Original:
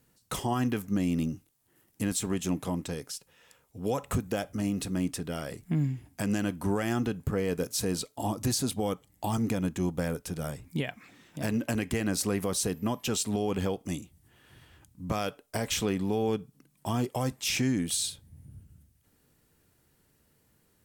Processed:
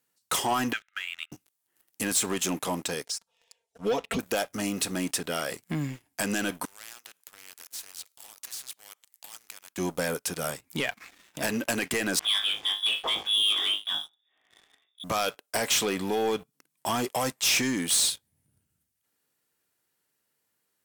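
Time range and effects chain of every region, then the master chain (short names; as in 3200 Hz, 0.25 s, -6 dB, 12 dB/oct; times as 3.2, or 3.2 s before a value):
0.73–1.32 Chebyshev band-pass 1300–3800 Hz, order 5 + transient shaper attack +5 dB, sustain 0 dB
3.05–4.19 comb 4.4 ms, depth 92% + envelope phaser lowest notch 200 Hz, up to 1600 Hz, full sweep at -26 dBFS + air absorption 74 m
6.65–9.78 overdrive pedal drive 8 dB, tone 1300 Hz, clips at -17.5 dBFS + differentiator + spectral compressor 2:1
12.19–15.04 flutter echo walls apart 3.3 m, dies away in 0.26 s + inverted band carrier 3600 Hz + air absorption 400 m
whole clip: HPF 940 Hz 6 dB/oct; sample leveller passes 3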